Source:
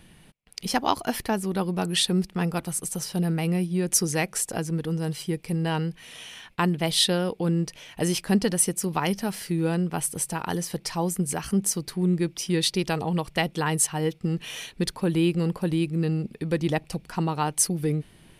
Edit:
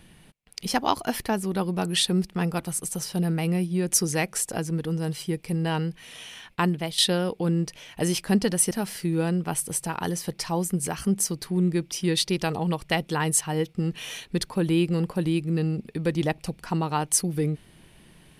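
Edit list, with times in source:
6.69–6.98 s: fade out, to -11.5 dB
8.71–9.17 s: delete

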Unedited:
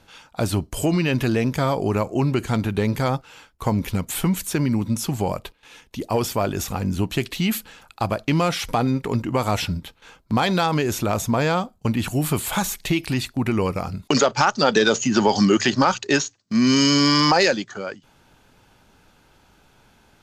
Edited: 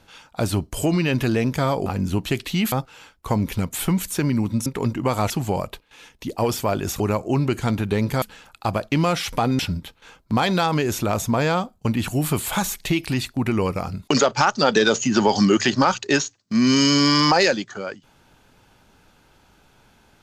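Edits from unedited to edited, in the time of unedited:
1.86–3.08 s: swap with 6.72–7.58 s
8.95–9.59 s: move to 5.02 s

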